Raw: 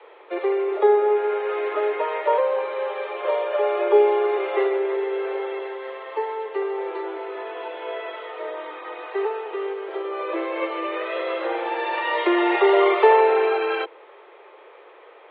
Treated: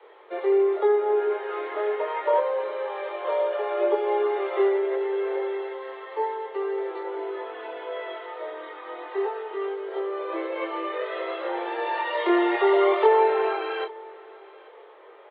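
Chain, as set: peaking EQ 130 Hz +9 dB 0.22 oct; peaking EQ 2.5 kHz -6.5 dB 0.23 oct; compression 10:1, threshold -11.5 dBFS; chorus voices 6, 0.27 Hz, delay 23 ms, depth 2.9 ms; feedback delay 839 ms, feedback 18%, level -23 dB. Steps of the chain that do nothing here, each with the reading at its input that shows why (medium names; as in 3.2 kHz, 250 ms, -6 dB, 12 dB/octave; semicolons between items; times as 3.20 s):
peaking EQ 130 Hz: input has nothing below 300 Hz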